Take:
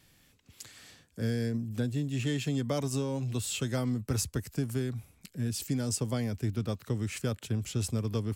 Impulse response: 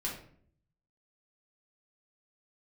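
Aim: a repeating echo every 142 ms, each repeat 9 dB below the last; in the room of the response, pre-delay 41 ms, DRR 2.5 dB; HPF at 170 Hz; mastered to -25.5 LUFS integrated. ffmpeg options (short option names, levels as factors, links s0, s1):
-filter_complex "[0:a]highpass=170,aecho=1:1:142|284|426|568:0.355|0.124|0.0435|0.0152,asplit=2[s0][s1];[1:a]atrim=start_sample=2205,adelay=41[s2];[s1][s2]afir=irnorm=-1:irlink=0,volume=0.562[s3];[s0][s3]amix=inputs=2:normalize=0,volume=2"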